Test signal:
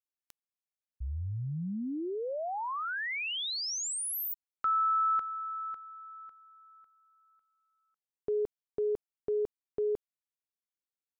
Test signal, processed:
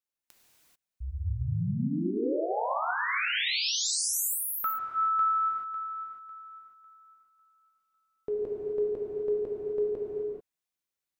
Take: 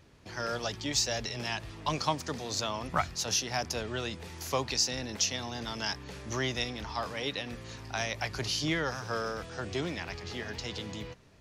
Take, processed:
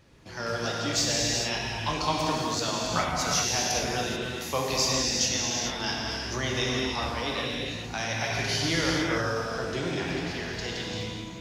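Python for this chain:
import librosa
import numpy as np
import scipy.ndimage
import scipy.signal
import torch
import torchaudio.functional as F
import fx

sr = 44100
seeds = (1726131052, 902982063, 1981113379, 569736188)

y = fx.rev_gated(x, sr, seeds[0], gate_ms=460, shape='flat', drr_db=-4.0)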